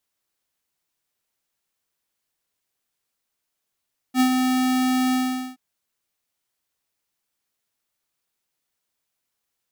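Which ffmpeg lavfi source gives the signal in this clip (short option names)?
-f lavfi -i "aevalsrc='0.158*(2*lt(mod(256*t,1),0.5)-1)':d=1.424:s=44100,afade=t=in:d=0.063,afade=t=out:st=0.063:d=0.084:silence=0.596,afade=t=out:st=0.99:d=0.434"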